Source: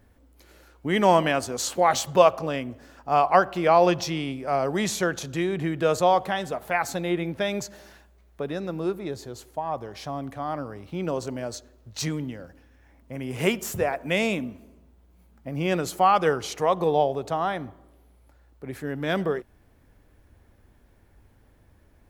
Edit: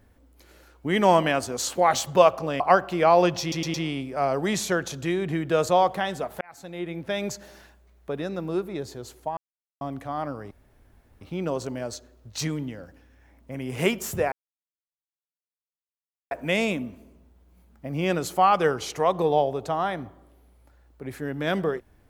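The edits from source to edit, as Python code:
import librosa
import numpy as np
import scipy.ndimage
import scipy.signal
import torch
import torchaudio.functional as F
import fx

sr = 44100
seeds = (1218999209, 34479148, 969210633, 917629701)

y = fx.edit(x, sr, fx.cut(start_s=2.6, length_s=0.64),
    fx.stutter(start_s=4.05, slice_s=0.11, count=4),
    fx.fade_in_span(start_s=6.72, length_s=0.9),
    fx.silence(start_s=9.68, length_s=0.44),
    fx.insert_room_tone(at_s=10.82, length_s=0.7),
    fx.insert_silence(at_s=13.93, length_s=1.99), tone=tone)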